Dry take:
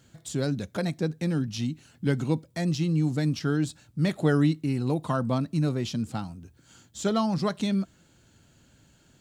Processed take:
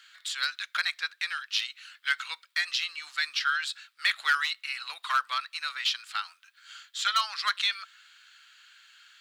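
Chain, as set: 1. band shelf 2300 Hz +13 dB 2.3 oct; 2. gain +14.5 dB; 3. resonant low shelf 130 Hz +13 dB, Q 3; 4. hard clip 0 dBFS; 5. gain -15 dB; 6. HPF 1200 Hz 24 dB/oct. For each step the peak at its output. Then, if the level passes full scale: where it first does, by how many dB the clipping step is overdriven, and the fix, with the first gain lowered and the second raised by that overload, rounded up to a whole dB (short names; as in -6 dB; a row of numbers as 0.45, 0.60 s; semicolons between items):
-6.5, +8.0, +6.0, 0.0, -15.0, -11.5 dBFS; step 2, 6.0 dB; step 2 +8.5 dB, step 5 -9 dB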